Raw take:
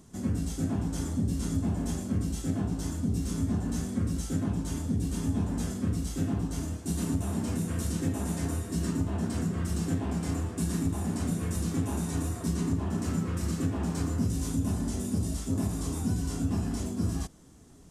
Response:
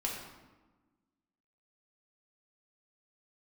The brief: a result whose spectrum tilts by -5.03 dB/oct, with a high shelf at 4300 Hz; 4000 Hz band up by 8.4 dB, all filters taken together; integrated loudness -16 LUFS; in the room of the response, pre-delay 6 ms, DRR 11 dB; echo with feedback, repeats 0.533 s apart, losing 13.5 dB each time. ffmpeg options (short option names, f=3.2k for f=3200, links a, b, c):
-filter_complex "[0:a]equalizer=f=4k:t=o:g=8.5,highshelf=f=4.3k:g=4,aecho=1:1:533|1066:0.211|0.0444,asplit=2[a][b];[1:a]atrim=start_sample=2205,adelay=6[c];[b][c]afir=irnorm=-1:irlink=0,volume=-14.5dB[d];[a][d]amix=inputs=2:normalize=0,volume=14.5dB"